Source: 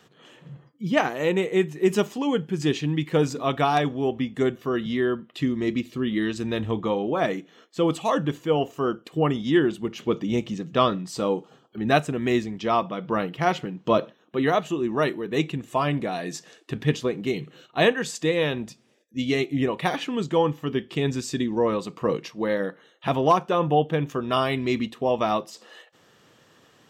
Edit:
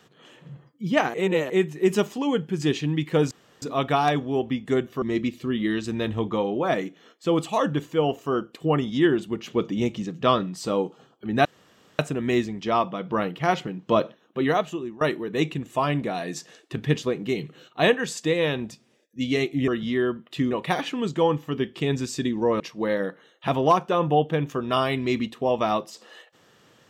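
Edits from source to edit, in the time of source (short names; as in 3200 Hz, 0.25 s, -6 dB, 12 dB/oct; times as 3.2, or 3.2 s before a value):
1.14–1.5 reverse
3.31 insert room tone 0.31 s
4.71–5.54 move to 19.66
11.97 insert room tone 0.54 s
14.38–14.99 fade out equal-power, to -22 dB
21.75–22.2 cut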